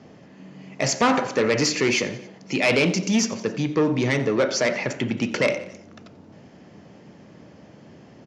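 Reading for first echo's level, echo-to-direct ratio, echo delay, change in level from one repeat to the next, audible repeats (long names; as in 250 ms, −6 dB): −19.0 dB, −17.5 dB, 90 ms, −4.5 dB, 3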